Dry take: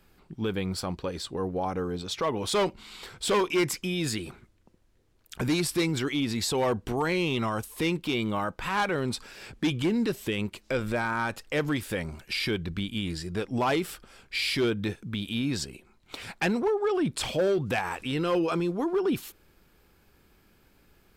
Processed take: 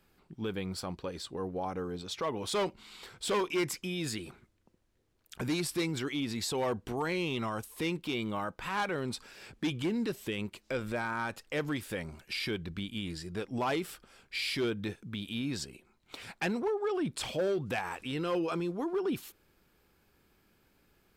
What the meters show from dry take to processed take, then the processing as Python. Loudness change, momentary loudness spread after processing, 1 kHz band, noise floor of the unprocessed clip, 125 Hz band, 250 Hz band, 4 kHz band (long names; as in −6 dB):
−5.5 dB, 8 LU, −5.5 dB, −63 dBFS, −6.5 dB, −6.0 dB, −5.5 dB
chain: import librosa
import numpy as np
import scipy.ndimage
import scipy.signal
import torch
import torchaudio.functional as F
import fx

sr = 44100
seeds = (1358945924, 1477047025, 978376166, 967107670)

y = fx.low_shelf(x, sr, hz=67.0, db=-6.0)
y = y * 10.0 ** (-5.5 / 20.0)